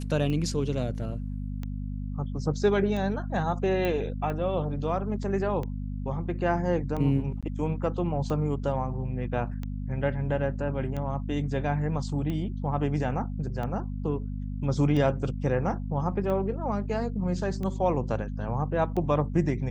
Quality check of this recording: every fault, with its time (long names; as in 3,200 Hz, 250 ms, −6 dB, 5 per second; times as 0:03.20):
mains hum 50 Hz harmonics 5 −33 dBFS
scratch tick 45 rpm −22 dBFS
0:03.85: click −17 dBFS
0:07.41–0:07.43: drop-out 16 ms